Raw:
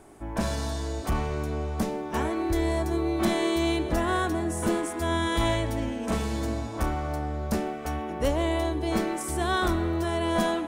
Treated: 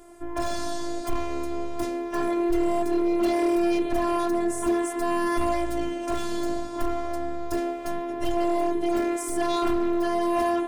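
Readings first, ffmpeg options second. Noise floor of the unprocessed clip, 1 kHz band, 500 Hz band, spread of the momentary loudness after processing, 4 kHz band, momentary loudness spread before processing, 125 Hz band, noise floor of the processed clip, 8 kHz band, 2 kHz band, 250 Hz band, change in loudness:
-35 dBFS, +2.0 dB, +3.0 dB, 8 LU, -4.5 dB, 6 LU, -13.5 dB, -33 dBFS, -0.5 dB, -3.0 dB, +3.0 dB, +1.5 dB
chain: -af "afftfilt=real='hypot(re,im)*cos(PI*b)':imag='0':win_size=512:overlap=0.75,asoftclip=type=hard:threshold=0.0891,volume=1.78"

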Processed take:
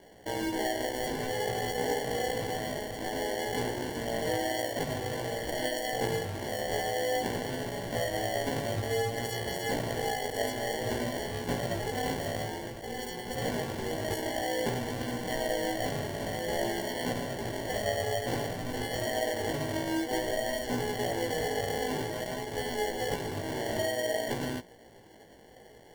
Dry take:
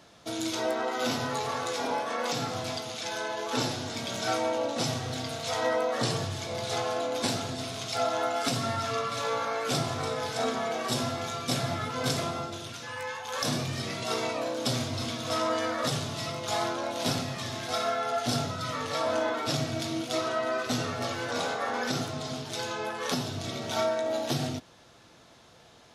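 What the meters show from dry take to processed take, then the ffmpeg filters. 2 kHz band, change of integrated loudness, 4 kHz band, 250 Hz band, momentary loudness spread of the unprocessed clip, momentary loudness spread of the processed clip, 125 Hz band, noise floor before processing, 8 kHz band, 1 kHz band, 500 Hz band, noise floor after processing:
-0.5 dB, -2.0 dB, -4.5 dB, -1.0 dB, 6 LU, 4 LU, -2.5 dB, -55 dBFS, -3.5 dB, -3.0 dB, -0.5 dB, -53 dBFS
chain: -af "equalizer=f=440:w=1.6:g=12.5,acompressor=threshold=0.0501:ratio=3,acrusher=samples=35:mix=1:aa=0.000001,flanger=delay=16.5:depth=2.6:speed=0.53"

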